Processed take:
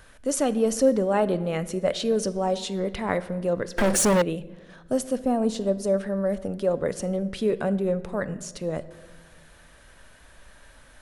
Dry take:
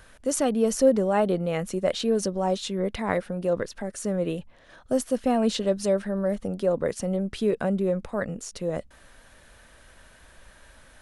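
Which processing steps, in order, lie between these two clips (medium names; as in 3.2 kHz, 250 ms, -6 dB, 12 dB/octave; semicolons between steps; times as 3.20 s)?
5.19–5.94 s: peaking EQ 2.7 kHz -10 dB 2.1 oct; simulated room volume 1000 m³, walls mixed, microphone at 0.34 m; 3.78–4.22 s: waveshaping leveller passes 5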